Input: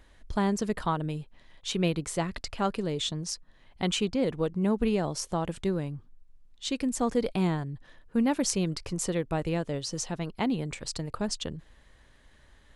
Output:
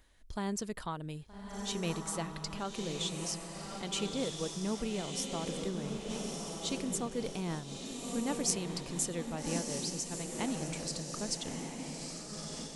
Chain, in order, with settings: treble shelf 4.1 kHz +10 dB; echo that smears into a reverb 1249 ms, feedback 51%, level -3.5 dB; random flutter of the level, depth 55%; trim -7 dB

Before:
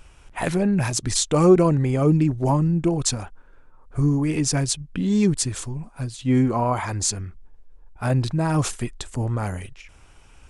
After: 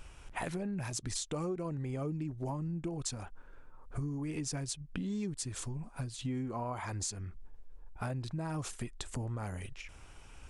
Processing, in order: compression 6:1, threshold -33 dBFS, peak gain reduction 21.5 dB; trim -2.5 dB

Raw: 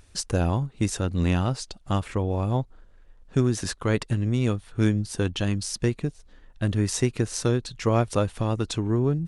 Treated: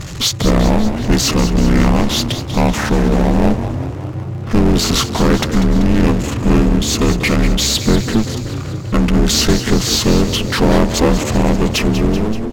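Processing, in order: fade out at the end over 0.60 s; ring modulator 150 Hz; power-law waveshaper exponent 0.5; on a send: frequency-shifting echo 142 ms, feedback 64%, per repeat +40 Hz, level -11 dB; on the sum: speed mistake 45 rpm record played at 33 rpm; trim +7.5 dB

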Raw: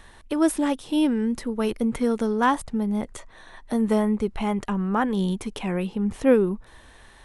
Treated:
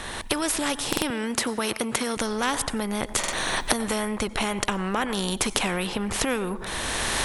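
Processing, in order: recorder AGC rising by 26 dB/s; reverberation RT60 0.50 s, pre-delay 83 ms, DRR 23 dB; in parallel at +2 dB: compression, threshold -30 dBFS, peak gain reduction 16.5 dB; 1.10–2.17 s: on the sum: high-pass 190 Hz 12 dB/octave; buffer glitch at 0.88/3.19 s, samples 2048, times 2; spectrum-flattening compressor 2:1

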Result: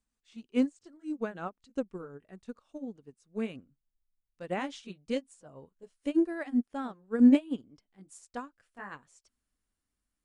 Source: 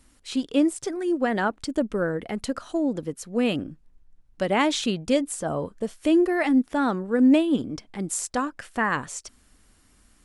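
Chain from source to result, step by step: pitch bend over the whole clip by -2.5 st ending unshifted; upward expansion 2.5:1, over -32 dBFS

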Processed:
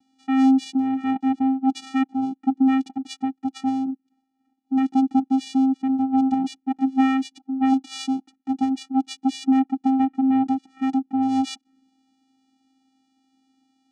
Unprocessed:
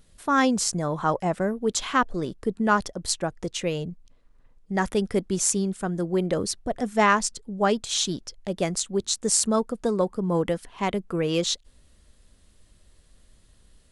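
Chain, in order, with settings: touch-sensitive phaser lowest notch 150 Hz, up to 1.7 kHz, full sweep at -27 dBFS; vocoder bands 4, square 265 Hz; trim +6 dB

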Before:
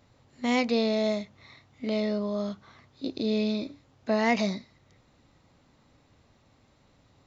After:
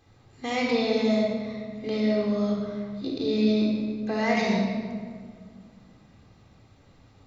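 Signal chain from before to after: in parallel at -1 dB: peak limiter -23 dBFS, peak gain reduction 10.5 dB; on the sum: simulated room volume 2900 m³, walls mixed, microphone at 3.8 m; trim -7 dB

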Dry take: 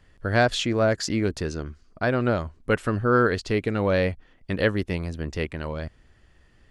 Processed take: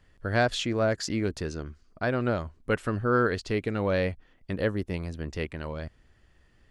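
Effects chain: 4.51–4.94 s: peaking EQ 2.9 kHz -6 dB 2.2 oct; trim -4 dB

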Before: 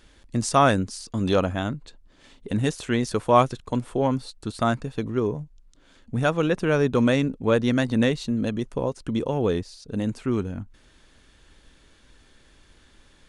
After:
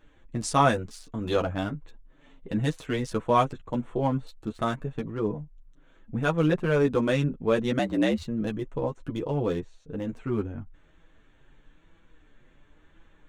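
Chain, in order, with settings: local Wiener filter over 9 samples; chorus voices 6, 0.32 Hz, delay 10 ms, depth 4 ms; 7.79–8.23 s: frequency shift +64 Hz

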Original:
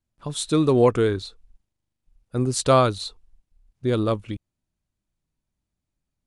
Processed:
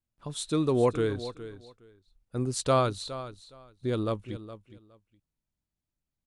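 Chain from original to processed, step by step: feedback delay 415 ms, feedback 18%, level -14 dB; trim -7 dB

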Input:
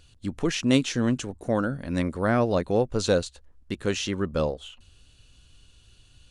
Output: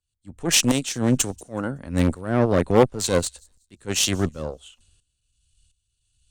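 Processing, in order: peaking EQ 8.4 kHz +12.5 dB 0.55 oct; transient shaper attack -8 dB, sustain -2 dB; tremolo saw up 1.4 Hz, depth 80%; Chebyshev shaper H 4 -13 dB, 6 -26 dB, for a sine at -18.5 dBFS; feedback echo behind a high-pass 188 ms, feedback 46%, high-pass 5.3 kHz, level -20 dB; three bands expanded up and down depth 70%; trim +7.5 dB

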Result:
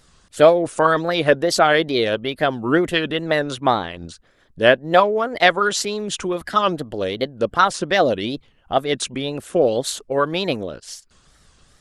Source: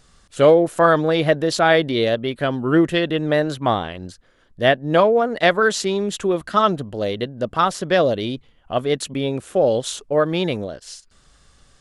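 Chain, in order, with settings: wow and flutter 130 cents; harmonic-percussive split percussive +8 dB; trim -4.5 dB

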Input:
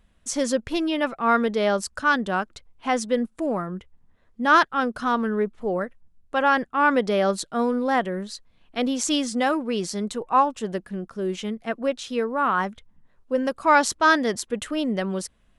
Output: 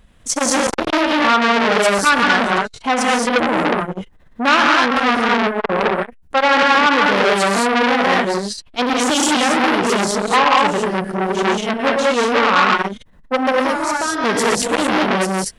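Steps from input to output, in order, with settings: 12.19–12.61 s: low-pass 9.3 kHz; 13.53–14.24 s: compression 10:1, threshold -29 dBFS, peak gain reduction 17.5 dB; gated-style reverb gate 250 ms rising, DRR -3.5 dB; loudness maximiser +10.5 dB; transformer saturation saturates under 1.8 kHz

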